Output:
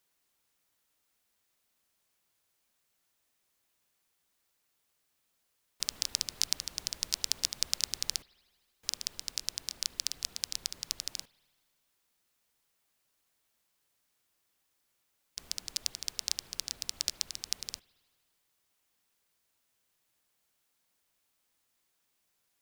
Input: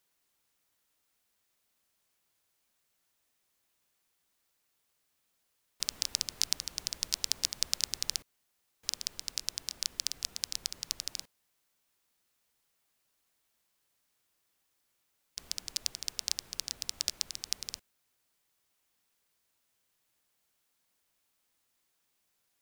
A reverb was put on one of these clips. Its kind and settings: spring tank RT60 1.7 s, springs 53 ms, chirp 25 ms, DRR 19.5 dB

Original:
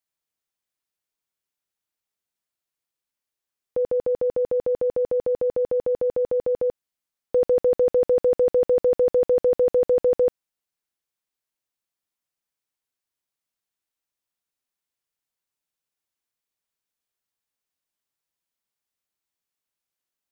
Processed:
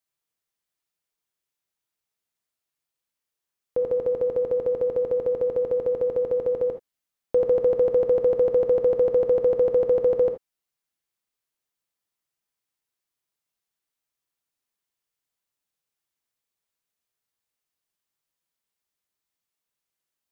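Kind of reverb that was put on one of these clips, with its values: gated-style reverb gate 100 ms flat, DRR 6 dB

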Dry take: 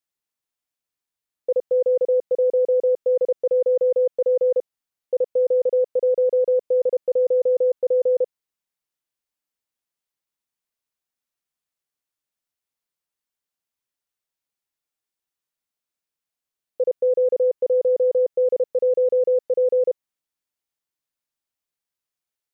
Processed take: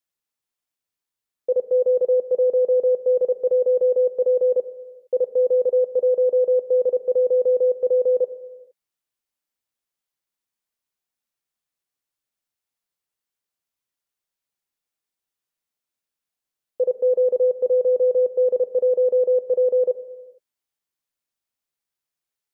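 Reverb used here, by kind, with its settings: gated-style reverb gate 490 ms falling, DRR 11 dB

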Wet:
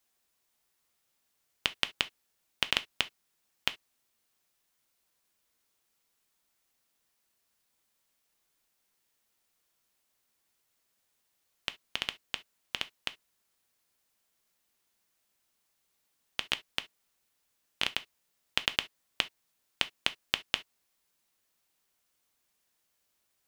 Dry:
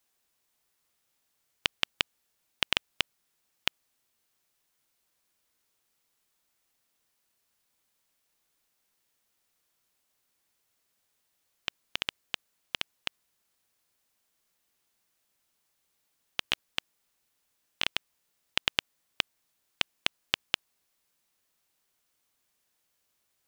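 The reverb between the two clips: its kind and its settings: gated-style reverb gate 90 ms falling, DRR 11 dB; trim -1 dB

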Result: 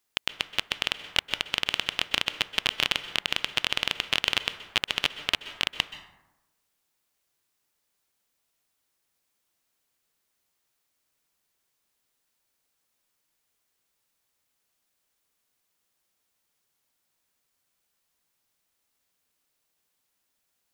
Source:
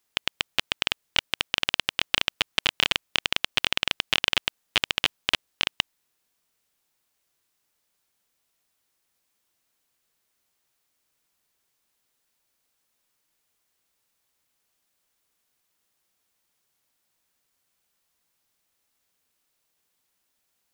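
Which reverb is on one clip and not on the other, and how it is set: plate-style reverb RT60 1 s, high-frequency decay 0.45×, pre-delay 115 ms, DRR 12 dB; trim -2 dB

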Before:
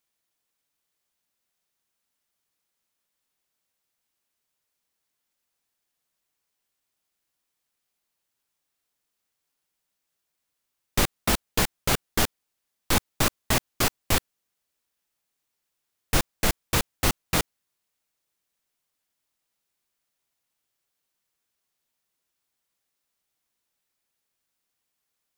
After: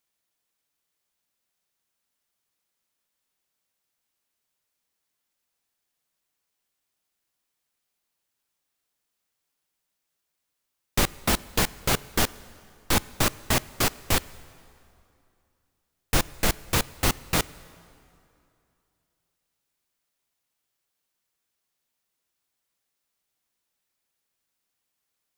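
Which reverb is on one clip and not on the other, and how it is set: plate-style reverb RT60 2.7 s, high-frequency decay 0.75×, DRR 19 dB

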